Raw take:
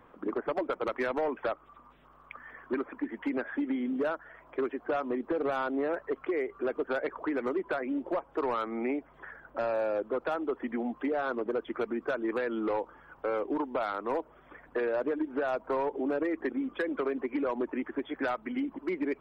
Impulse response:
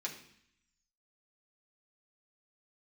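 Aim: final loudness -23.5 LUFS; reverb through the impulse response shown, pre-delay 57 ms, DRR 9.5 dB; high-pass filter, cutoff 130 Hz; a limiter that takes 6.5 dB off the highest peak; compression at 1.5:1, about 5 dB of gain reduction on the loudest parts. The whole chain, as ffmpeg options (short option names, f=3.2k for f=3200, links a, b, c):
-filter_complex "[0:a]highpass=130,acompressor=threshold=-41dB:ratio=1.5,alimiter=level_in=7.5dB:limit=-24dB:level=0:latency=1,volume=-7.5dB,asplit=2[a][b];[1:a]atrim=start_sample=2205,adelay=57[c];[b][c]afir=irnorm=-1:irlink=0,volume=-10dB[d];[a][d]amix=inputs=2:normalize=0,volume=16.5dB"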